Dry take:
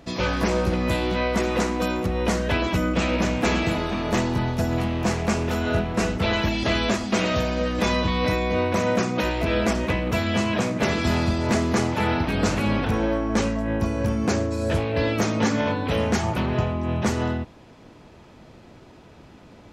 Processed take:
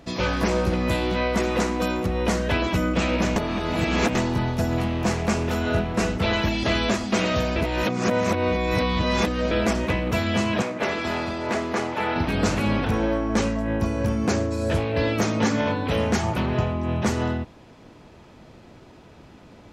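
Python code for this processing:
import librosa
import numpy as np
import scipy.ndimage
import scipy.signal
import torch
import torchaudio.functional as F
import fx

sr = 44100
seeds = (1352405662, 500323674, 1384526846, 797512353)

y = fx.bass_treble(x, sr, bass_db=-13, treble_db=-8, at=(10.62, 12.16))
y = fx.edit(y, sr, fx.reverse_span(start_s=3.36, length_s=0.79),
    fx.reverse_span(start_s=7.56, length_s=1.95), tone=tone)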